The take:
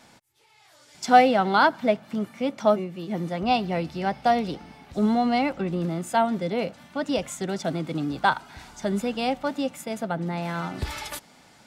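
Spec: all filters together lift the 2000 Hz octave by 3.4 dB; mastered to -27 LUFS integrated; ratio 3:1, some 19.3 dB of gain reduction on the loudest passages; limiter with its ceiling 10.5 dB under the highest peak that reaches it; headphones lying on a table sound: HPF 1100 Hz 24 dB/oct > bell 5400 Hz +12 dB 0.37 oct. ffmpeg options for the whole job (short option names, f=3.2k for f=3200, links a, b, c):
-af "equalizer=f=2k:t=o:g=5,acompressor=threshold=-36dB:ratio=3,alimiter=level_in=5.5dB:limit=-24dB:level=0:latency=1,volume=-5.5dB,highpass=f=1.1k:w=0.5412,highpass=f=1.1k:w=1.3066,equalizer=f=5.4k:t=o:w=0.37:g=12,volume=17dB"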